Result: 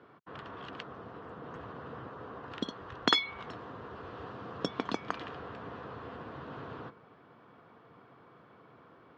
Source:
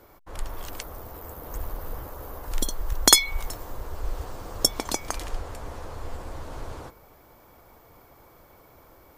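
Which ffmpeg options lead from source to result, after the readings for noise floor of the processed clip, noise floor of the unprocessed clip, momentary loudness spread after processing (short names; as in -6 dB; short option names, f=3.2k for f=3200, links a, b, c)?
-59 dBFS, -55 dBFS, 24 LU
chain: -filter_complex "[0:a]asplit=2[a][b];[b]aeval=exprs='0.316*(abs(mod(val(0)/0.316+3,4)-2)-1)':c=same,volume=-7.5dB[c];[a][c]amix=inputs=2:normalize=0,highpass=f=130:w=0.5412,highpass=f=130:w=1.3066,equalizer=f=340:t=q:w=4:g=-5,equalizer=f=580:t=q:w=4:g=-9,equalizer=f=850:t=q:w=4:g=-8,equalizer=f=2.2k:t=q:w=4:g=-9,lowpass=f=3k:w=0.5412,lowpass=f=3k:w=1.3066,volume=-1.5dB"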